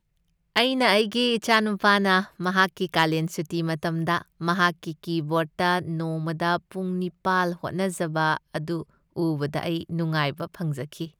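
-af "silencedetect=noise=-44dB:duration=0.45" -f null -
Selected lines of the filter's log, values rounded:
silence_start: 0.00
silence_end: 0.56 | silence_duration: 0.56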